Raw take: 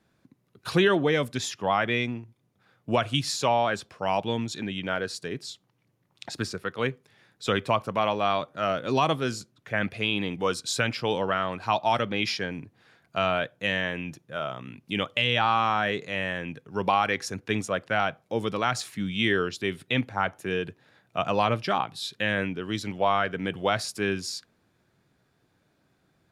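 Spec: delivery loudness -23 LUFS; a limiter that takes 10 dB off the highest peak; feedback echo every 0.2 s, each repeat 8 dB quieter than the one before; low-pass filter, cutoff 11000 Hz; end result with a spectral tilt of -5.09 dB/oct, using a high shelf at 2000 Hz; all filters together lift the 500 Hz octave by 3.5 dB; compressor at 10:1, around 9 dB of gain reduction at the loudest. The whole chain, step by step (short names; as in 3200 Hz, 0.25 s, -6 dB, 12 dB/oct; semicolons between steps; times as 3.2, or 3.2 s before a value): LPF 11000 Hz; bell 500 Hz +5 dB; high shelf 2000 Hz -7 dB; compressor 10:1, threshold -25 dBFS; limiter -24 dBFS; feedback echo 0.2 s, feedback 40%, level -8 dB; gain +12 dB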